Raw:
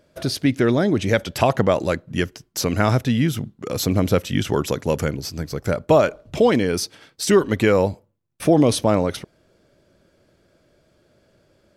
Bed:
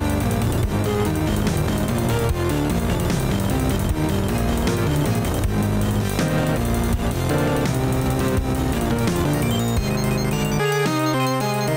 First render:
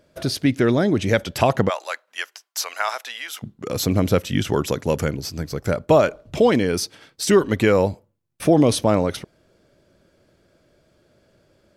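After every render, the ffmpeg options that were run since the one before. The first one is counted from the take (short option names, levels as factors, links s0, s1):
-filter_complex "[0:a]asplit=3[s0][s1][s2];[s0]afade=t=out:st=1.68:d=0.02[s3];[s1]highpass=f=770:w=0.5412,highpass=f=770:w=1.3066,afade=t=in:st=1.68:d=0.02,afade=t=out:st=3.42:d=0.02[s4];[s2]afade=t=in:st=3.42:d=0.02[s5];[s3][s4][s5]amix=inputs=3:normalize=0"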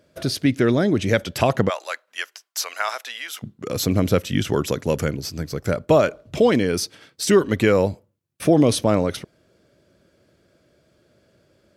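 -af "highpass=57,equalizer=f=860:t=o:w=0.58:g=-3.5"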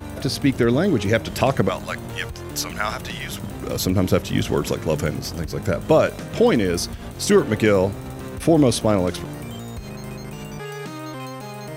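-filter_complex "[1:a]volume=0.237[s0];[0:a][s0]amix=inputs=2:normalize=0"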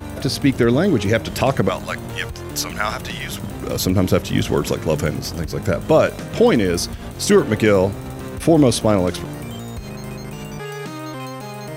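-af "volume=1.33,alimiter=limit=0.708:level=0:latency=1"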